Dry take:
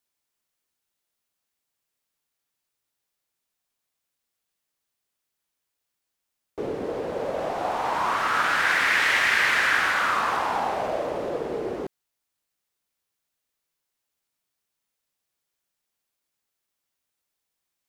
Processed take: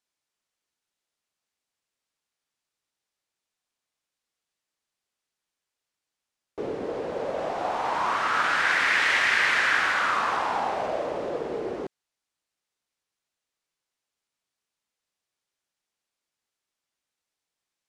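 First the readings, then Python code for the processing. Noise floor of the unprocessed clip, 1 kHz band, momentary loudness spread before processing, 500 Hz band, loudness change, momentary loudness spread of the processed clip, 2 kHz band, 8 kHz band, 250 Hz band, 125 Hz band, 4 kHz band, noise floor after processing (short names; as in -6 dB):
-82 dBFS, -1.0 dB, 12 LU, -1.5 dB, -1.0 dB, 12 LU, -1.0 dB, -3.0 dB, -2.0 dB, -3.5 dB, -1.0 dB, under -85 dBFS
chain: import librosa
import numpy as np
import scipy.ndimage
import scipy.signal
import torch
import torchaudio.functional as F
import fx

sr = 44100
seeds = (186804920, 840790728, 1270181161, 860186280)

y = scipy.signal.sosfilt(scipy.signal.butter(2, 8300.0, 'lowpass', fs=sr, output='sos'), x)
y = fx.low_shelf(y, sr, hz=160.0, db=-4.0)
y = F.gain(torch.from_numpy(y), -1.0).numpy()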